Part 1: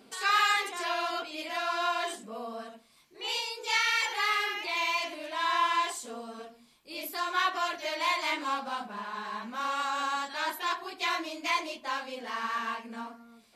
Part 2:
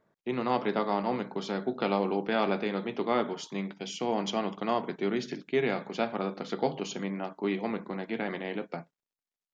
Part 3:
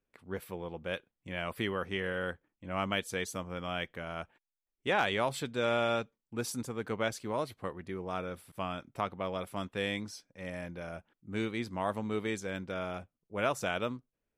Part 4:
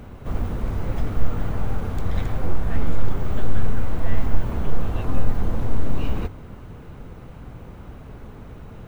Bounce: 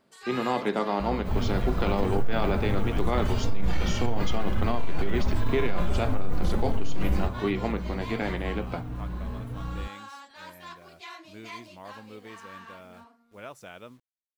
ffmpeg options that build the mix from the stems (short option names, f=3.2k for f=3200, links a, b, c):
-filter_complex "[0:a]volume=-13dB[a];[1:a]volume=2.5dB[b];[2:a]acrusher=bits=8:mix=0:aa=0.000001,volume=-11.5dB[c];[3:a]aeval=exprs='val(0)+0.0251*(sin(2*PI*60*n/s)+sin(2*PI*2*60*n/s)/2+sin(2*PI*3*60*n/s)/3+sin(2*PI*4*60*n/s)/4+sin(2*PI*5*60*n/s)/5)':c=same,asplit=2[d][e];[e]adelay=3.7,afreqshift=1.5[f];[d][f]amix=inputs=2:normalize=1,adelay=1000,volume=1.5dB[g];[a][b][c][g]amix=inputs=4:normalize=0,alimiter=limit=-15dB:level=0:latency=1:release=11"